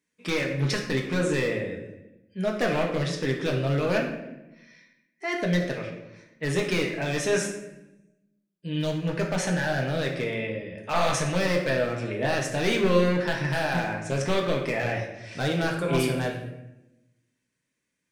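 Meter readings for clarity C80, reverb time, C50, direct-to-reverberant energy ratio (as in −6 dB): 8.0 dB, 0.95 s, 5.5 dB, −0.5 dB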